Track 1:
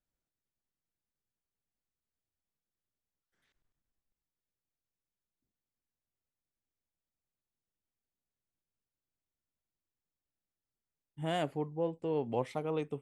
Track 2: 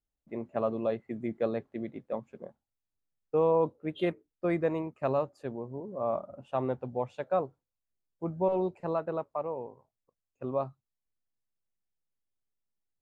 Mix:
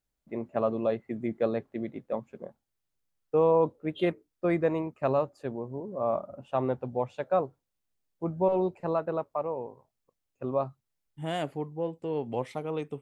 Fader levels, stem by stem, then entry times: +1.5, +2.5 dB; 0.00, 0.00 s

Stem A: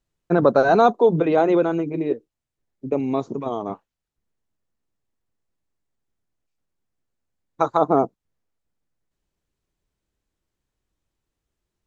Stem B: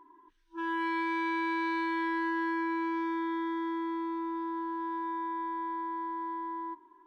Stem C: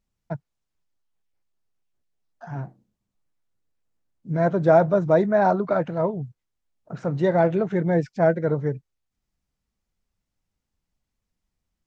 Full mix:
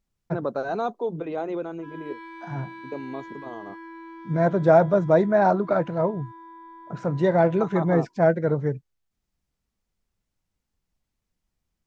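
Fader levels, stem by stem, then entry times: -12.0, -10.0, 0.0 dB; 0.00, 1.25, 0.00 s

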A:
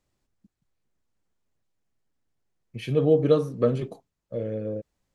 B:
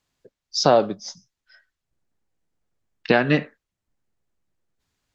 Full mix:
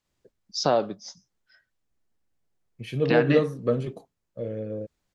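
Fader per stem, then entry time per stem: -2.0, -6.0 dB; 0.05, 0.00 s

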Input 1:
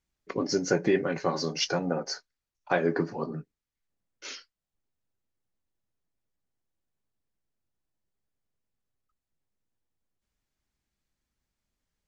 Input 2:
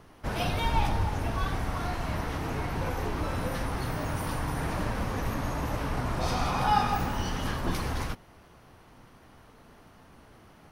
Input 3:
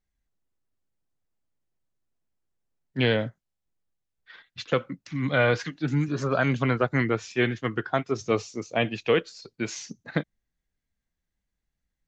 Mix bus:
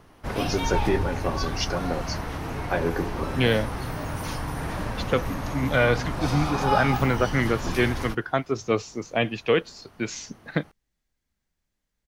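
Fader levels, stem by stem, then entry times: -0.5, +0.5, +1.0 dB; 0.00, 0.00, 0.40 s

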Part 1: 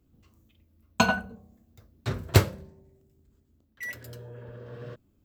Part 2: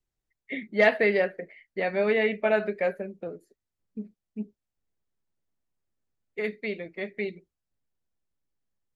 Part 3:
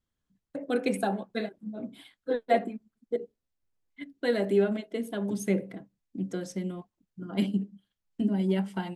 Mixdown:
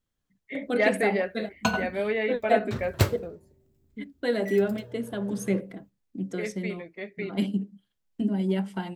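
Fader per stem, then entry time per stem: -3.5, -3.5, +0.5 dB; 0.65, 0.00, 0.00 s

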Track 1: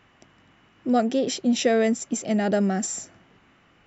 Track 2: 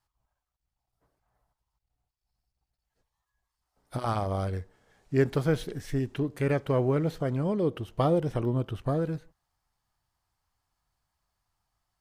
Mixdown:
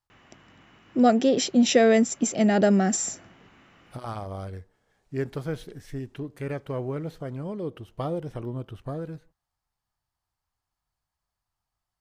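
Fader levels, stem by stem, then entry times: +2.5, -5.5 dB; 0.10, 0.00 s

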